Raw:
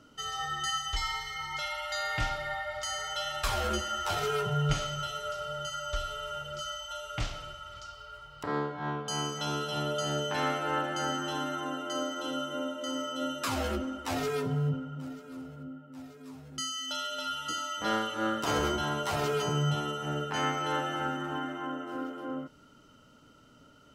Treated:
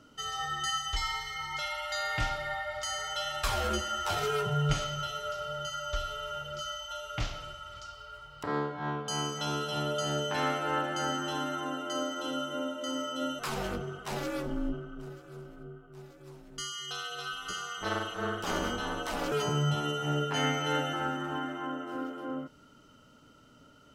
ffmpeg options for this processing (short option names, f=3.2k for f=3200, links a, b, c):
-filter_complex "[0:a]asettb=1/sr,asplit=3[a][b][c];[a]atrim=end=4.844[d];[b]atrim=start=4.84:end=7.42,asetpts=PTS-STARTPTS,afade=t=in:d=0.004:c=qsin,afade=t=out:st=2.576:d=0.004:c=qsin,equalizer=f=8.5k:w=5:g=-11[e];[c]atrim=start=7.416[f];[d][e]acrossfade=d=0.004:c1=hsin:c2=qsin[g];[g][f]acrossfade=d=0.004:c1=qsin:c2=hsin,asettb=1/sr,asplit=3[h][i][j];[h]atrim=end=13.394[k];[i]atrim=start=13.39:end=19.32,asetpts=PTS-STARTPTS,afade=t=in:d=0.004:c=qsin,afade=t=out:st=5.926:d=0.004:c=qsin,aeval=exprs='val(0)*sin(2*PI*120*n/s)':c=same[l];[j]atrim=start=19.316[m];[k][l]acrossfade=d=0.004:c1=hsin:c2=qsin[n];[n][m]acrossfade=d=0.004:c1=qsin:c2=hsin,asettb=1/sr,asplit=3[o][p][q];[o]atrim=end=19.834[r];[p]atrim=start=19.83:end=20.93,asetpts=PTS-STARTPTS,afade=t=in:d=0.004:c=qsin,afade=t=out:st=1.096:d=0.004:c=qsin,aecho=1:1:7.2:0.65,atrim=end_sample=48510[s];[q]atrim=start=20.926[t];[r][s]acrossfade=d=0.004:c1=hsin:c2=qsin[u];[u][t]acrossfade=d=0.004:c1=qsin:c2=hsin"